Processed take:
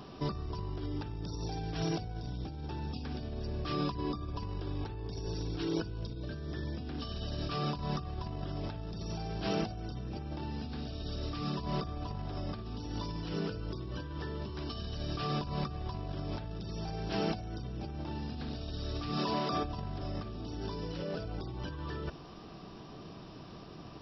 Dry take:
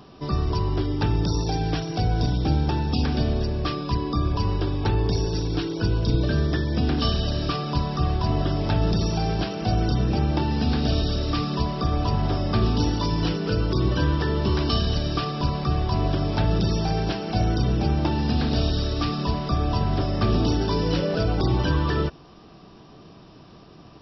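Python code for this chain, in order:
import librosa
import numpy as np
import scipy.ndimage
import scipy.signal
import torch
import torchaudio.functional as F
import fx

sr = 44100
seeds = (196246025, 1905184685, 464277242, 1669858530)

y = fx.highpass(x, sr, hz=250.0, slope=12, at=(19.17, 19.63), fade=0.02)
y = fx.over_compress(y, sr, threshold_db=-30.0, ratio=-1.0)
y = y * librosa.db_to_amplitude(-7.5)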